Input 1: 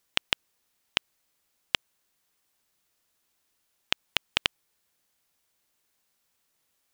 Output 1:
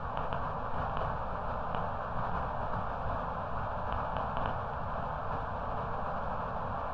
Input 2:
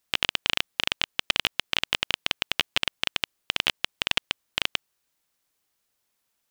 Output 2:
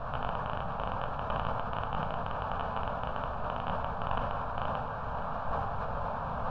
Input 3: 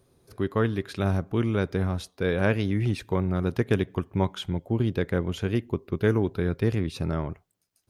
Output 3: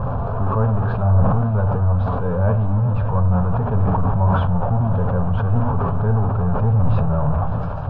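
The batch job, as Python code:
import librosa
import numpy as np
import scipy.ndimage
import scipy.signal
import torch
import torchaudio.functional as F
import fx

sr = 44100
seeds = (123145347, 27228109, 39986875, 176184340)

y = x + 0.5 * 10.0 ** (-18.5 / 20.0) * np.sign(x)
y = fx.low_shelf(y, sr, hz=190.0, db=3.5)
y = fx.room_shoebox(y, sr, seeds[0], volume_m3=56.0, walls='mixed', distance_m=0.3)
y = fx.rider(y, sr, range_db=10, speed_s=2.0)
y = scipy.signal.sosfilt(scipy.signal.butter(4, 1600.0, 'lowpass', fs=sr, output='sos'), y)
y = fx.fixed_phaser(y, sr, hz=830.0, stages=4)
y = y + 10.0 ** (-14.5 / 20.0) * np.pad(y, (int(569 * sr / 1000.0), 0))[:len(y)]
y = fx.sustainer(y, sr, db_per_s=23.0)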